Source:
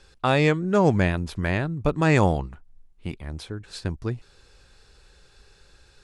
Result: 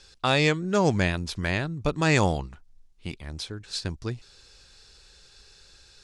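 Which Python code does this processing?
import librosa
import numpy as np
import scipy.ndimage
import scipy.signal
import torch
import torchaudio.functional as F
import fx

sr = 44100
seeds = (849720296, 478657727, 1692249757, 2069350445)

y = fx.peak_eq(x, sr, hz=5300.0, db=11.5, octaves=1.9)
y = y * librosa.db_to_amplitude(-3.5)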